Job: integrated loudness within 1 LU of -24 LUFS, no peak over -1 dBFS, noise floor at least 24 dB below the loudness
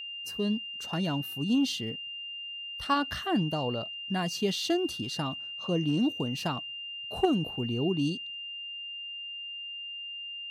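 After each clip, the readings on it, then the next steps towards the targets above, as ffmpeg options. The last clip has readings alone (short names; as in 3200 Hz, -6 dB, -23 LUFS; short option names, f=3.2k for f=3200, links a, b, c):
steady tone 2800 Hz; tone level -37 dBFS; loudness -31.5 LUFS; peak -14.5 dBFS; loudness target -24.0 LUFS
-> -af "bandreject=f=2.8k:w=30"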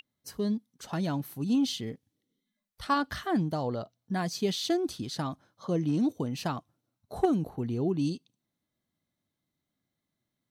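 steady tone none; loudness -31.0 LUFS; peak -15.0 dBFS; loudness target -24.0 LUFS
-> -af "volume=7dB"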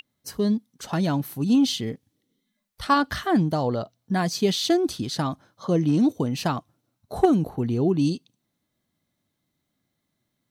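loudness -24.0 LUFS; peak -8.0 dBFS; noise floor -78 dBFS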